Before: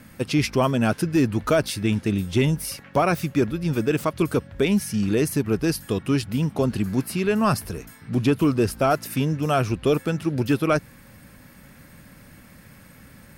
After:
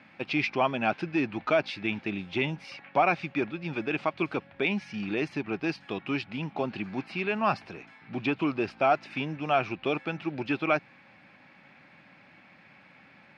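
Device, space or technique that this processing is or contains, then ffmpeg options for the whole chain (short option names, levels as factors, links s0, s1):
kitchen radio: -af "highpass=230,equalizer=f=240:t=q:w=4:g=-4,equalizer=f=460:t=q:w=4:g=-7,equalizer=f=790:t=q:w=4:g=8,equalizer=f=2400:t=q:w=4:g=9,lowpass=f=4100:w=0.5412,lowpass=f=4100:w=1.3066,volume=0.562"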